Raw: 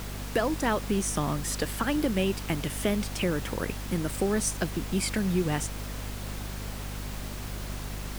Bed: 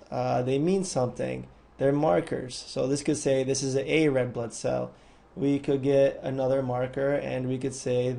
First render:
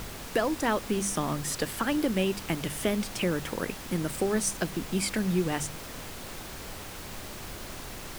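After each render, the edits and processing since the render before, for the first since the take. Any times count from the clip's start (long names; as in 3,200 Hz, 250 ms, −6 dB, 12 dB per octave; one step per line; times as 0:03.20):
hum removal 50 Hz, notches 5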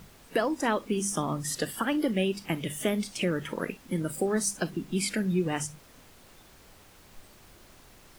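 noise reduction from a noise print 14 dB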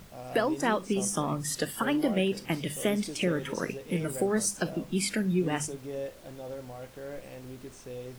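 mix in bed −14.5 dB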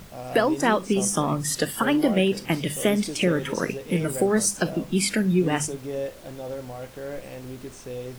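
level +6 dB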